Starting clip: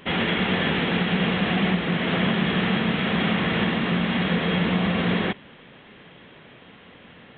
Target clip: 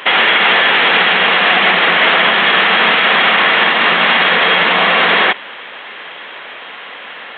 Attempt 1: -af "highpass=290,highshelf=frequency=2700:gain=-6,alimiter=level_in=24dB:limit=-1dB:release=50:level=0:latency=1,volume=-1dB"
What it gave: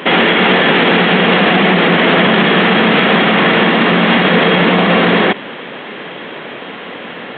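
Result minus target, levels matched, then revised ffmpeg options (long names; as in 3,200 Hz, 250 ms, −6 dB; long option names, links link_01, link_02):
250 Hz band +14.0 dB
-af "highpass=870,highshelf=frequency=2700:gain=-6,alimiter=level_in=24dB:limit=-1dB:release=50:level=0:latency=1,volume=-1dB"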